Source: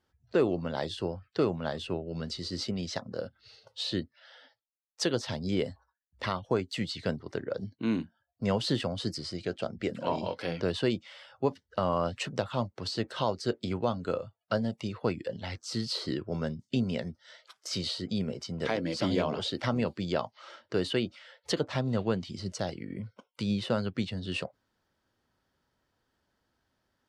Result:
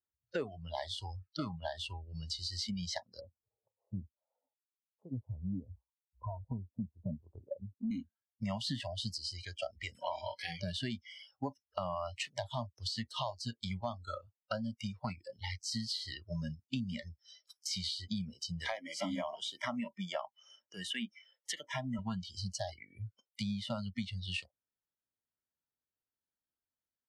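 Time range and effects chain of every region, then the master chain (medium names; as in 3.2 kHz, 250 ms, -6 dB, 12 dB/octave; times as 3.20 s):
3.20–7.91 s: low-pass that closes with the level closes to 640 Hz, closed at -29.5 dBFS + steep low-pass 1 kHz 48 dB/octave
18.72–21.99 s: high-pass 160 Hz + peaking EQ 4.4 kHz -13 dB 0.36 oct
whole clip: spectral noise reduction 28 dB; compression 4:1, threshold -38 dBFS; trim +2.5 dB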